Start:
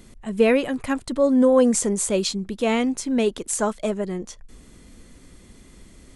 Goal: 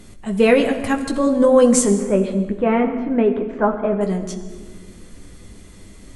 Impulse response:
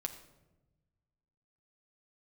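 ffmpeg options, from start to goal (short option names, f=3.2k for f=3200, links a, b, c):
-filter_complex "[0:a]asettb=1/sr,asplit=3[a][b][c];[a]atrim=end=1.914[d];[b]atrim=start=1.91:end=4.01,asetpts=PTS-STARTPTS,afade=t=in:d=0.004:c=qsin,afade=t=out:st=2.096:d=0.004:c=qsin,lowpass=f=2k:w=0.5412,lowpass=f=2k:w=1.3066[e];[c]atrim=start=4.006[f];[d][e]acrossfade=d=0.004:c1=hsin:c2=qsin[g];[g][f]acrossfade=d=0.004:c1=qsin:c2=hsin[h];[1:a]atrim=start_sample=2205,asetrate=25578,aresample=44100[i];[h][i]afir=irnorm=-1:irlink=0,volume=2.5dB"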